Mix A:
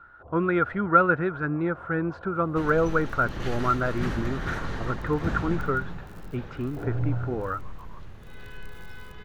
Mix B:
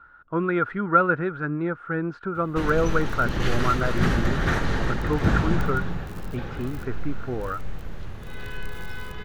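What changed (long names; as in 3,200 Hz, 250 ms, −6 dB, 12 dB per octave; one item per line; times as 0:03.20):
first sound: muted
second sound +8.0 dB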